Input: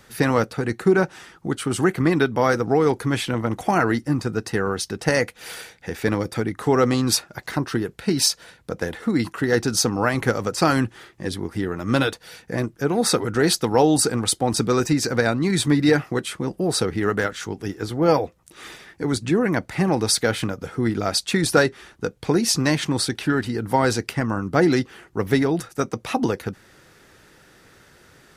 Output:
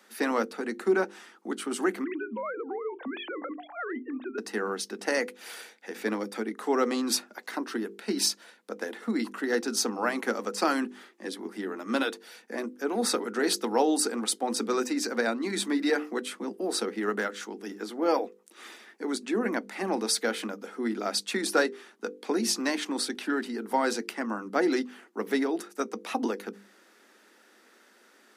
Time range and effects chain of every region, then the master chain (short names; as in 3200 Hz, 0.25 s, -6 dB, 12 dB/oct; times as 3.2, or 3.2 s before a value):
2.04–4.38 sine-wave speech + auto swell 0.301 s + compressor 12:1, threshold -23 dBFS
whole clip: Chebyshev high-pass 200 Hz, order 8; notches 50/100/150/200/250/300/350/400/450/500 Hz; gain -6 dB